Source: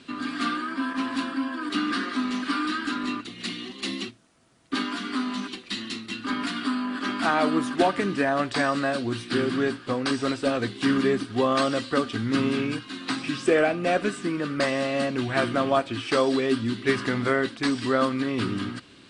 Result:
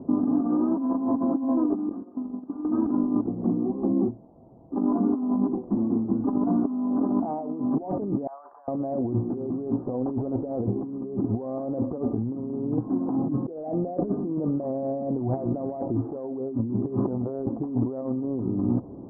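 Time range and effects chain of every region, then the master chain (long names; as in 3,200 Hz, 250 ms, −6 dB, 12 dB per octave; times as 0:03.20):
0:01.89–0:02.65: noise gate −27 dBFS, range −23 dB + downward compressor, threshold −41 dBFS
0:08.27–0:08.68: four-pole ladder high-pass 1,100 Hz, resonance 45% + compressor whose output falls as the input rises −42 dBFS
whole clip: Butterworth low-pass 870 Hz 48 dB per octave; compressor whose output falls as the input rises −34 dBFS, ratio −1; level +7 dB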